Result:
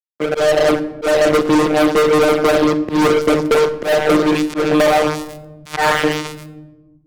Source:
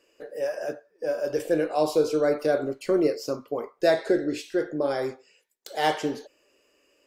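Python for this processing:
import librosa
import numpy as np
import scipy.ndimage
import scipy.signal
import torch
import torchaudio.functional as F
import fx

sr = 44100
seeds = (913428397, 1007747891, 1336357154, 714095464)

y = fx.block_float(x, sr, bits=3, at=(4.88, 5.78))
y = fx.echo_wet_highpass(y, sr, ms=136, feedback_pct=64, hz=2800.0, wet_db=-5.0)
y = fx.rider(y, sr, range_db=4, speed_s=0.5)
y = fx.filter_sweep_bandpass(y, sr, from_hz=290.0, to_hz=1600.0, start_s=2.73, end_s=6.19, q=1.2)
y = fx.robotise(y, sr, hz=152.0)
y = fx.filter_lfo_notch(y, sr, shape='saw_up', hz=0.71, low_hz=460.0, high_hz=6900.0, q=1.7)
y = fx.fuzz(y, sr, gain_db=39.0, gate_db=-47.0)
y = fx.room_shoebox(y, sr, seeds[0], volume_m3=2100.0, walls='furnished', distance_m=0.86)
y = fx.auto_swell(y, sr, attack_ms=178.0)
y = fx.band_squash(y, sr, depth_pct=70)
y = y * librosa.db_to_amplitude(4.5)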